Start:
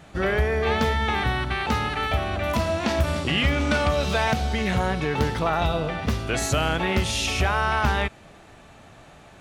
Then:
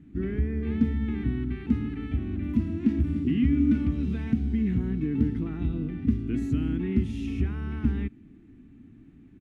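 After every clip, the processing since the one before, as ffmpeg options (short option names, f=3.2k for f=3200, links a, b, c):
-af "firequalizer=gain_entry='entry(170,0);entry(260,12);entry(560,-29);entry(2000,-15);entry(4300,-27);entry(12000,-25)':delay=0.05:min_phase=1,volume=-2.5dB"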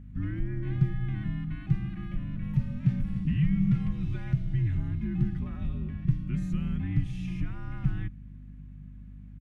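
-af "aecho=1:1:4.4:0.33,afreqshift=-93,aeval=exprs='val(0)+0.00891*(sin(2*PI*50*n/s)+sin(2*PI*2*50*n/s)/2+sin(2*PI*3*50*n/s)/3+sin(2*PI*4*50*n/s)/4+sin(2*PI*5*50*n/s)/5)':c=same,volume=-3dB"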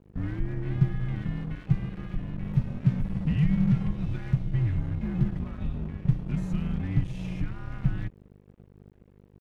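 -af "aeval=exprs='sgn(val(0))*max(abs(val(0))-0.00708,0)':c=same,volume=2.5dB"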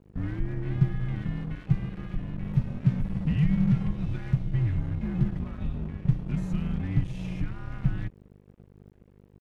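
-af "aresample=32000,aresample=44100"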